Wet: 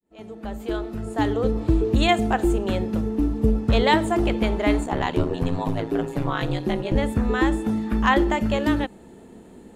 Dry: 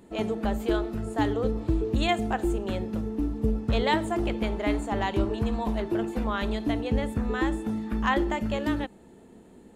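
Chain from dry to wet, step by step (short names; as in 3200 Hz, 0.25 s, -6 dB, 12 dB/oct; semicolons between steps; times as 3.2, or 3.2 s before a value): opening faded in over 1.73 s; 4.84–6.94 ring modulator 33 Hz -> 96 Hz; gain +6 dB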